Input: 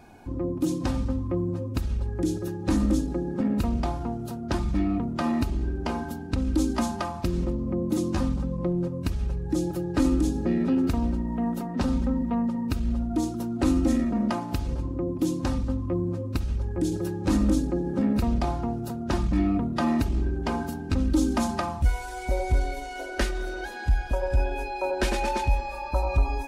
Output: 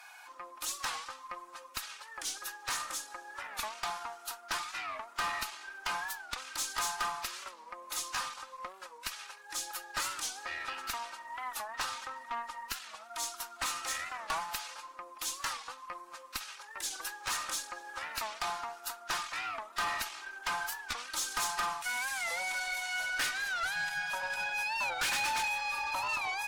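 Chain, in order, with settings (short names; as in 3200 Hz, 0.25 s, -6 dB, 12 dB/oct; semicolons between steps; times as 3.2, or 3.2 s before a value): HPF 1100 Hz 24 dB/oct; 2.81–3.54 dynamic EQ 3800 Hz, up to -4 dB, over -58 dBFS, Q 0.7; tube stage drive 37 dB, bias 0.3; record warp 45 rpm, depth 160 cents; gain +8.5 dB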